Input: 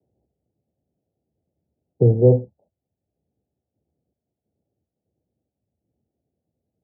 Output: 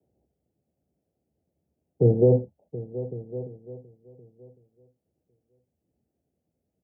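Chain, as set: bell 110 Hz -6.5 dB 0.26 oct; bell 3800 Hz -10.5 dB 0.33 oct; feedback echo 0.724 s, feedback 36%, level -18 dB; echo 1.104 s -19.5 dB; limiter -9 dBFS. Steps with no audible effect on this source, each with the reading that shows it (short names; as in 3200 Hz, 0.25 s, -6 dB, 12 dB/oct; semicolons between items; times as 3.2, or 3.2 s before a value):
bell 3800 Hz: input band ends at 640 Hz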